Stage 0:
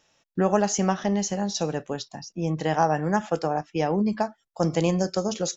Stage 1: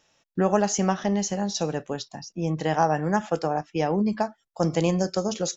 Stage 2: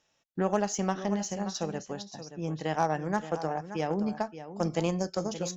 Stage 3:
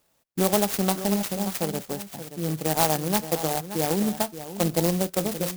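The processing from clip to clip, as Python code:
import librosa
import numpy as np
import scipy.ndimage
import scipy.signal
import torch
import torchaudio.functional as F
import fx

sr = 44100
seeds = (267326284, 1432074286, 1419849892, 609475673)

y1 = x
y2 = y1 + 10.0 ** (-11.0 / 20.0) * np.pad(y1, (int(576 * sr / 1000.0), 0))[:len(y1)]
y2 = fx.cheby_harmonics(y2, sr, harmonics=(7,), levels_db=(-30,), full_scale_db=-7.0)
y2 = y2 * librosa.db_to_amplitude(-5.5)
y3 = fx.clock_jitter(y2, sr, seeds[0], jitter_ms=0.14)
y3 = y3 * librosa.db_to_amplitude(5.5)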